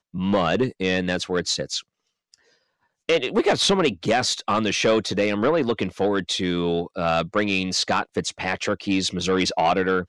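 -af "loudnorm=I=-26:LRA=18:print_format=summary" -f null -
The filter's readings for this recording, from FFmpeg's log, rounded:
Input Integrated:    -22.6 LUFS
Input True Peak:     -10.7 dBTP
Input LRA:             2.7 LU
Input Threshold:     -32.9 LUFS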